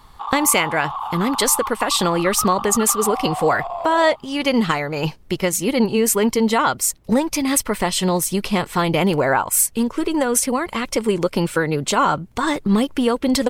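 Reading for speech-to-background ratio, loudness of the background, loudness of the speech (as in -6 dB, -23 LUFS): 9.0 dB, -28.0 LUFS, -19.0 LUFS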